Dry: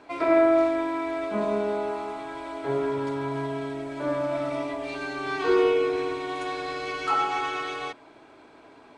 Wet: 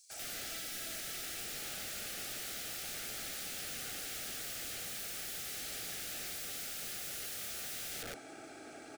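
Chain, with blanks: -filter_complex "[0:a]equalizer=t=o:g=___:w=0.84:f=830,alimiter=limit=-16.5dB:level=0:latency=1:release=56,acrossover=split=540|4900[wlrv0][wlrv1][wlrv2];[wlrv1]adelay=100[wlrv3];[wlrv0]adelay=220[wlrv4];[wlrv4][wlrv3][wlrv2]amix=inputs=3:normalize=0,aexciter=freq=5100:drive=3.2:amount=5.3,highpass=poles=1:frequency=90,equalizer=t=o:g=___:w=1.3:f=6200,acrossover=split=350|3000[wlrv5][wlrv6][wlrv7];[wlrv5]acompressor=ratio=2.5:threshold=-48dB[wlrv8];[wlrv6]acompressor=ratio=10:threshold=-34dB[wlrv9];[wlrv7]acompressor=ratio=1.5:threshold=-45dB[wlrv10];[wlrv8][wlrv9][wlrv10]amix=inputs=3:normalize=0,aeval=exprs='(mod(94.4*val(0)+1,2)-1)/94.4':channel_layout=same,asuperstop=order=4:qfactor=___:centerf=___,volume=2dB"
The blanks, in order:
3.5, 3.5, 2.6, 1000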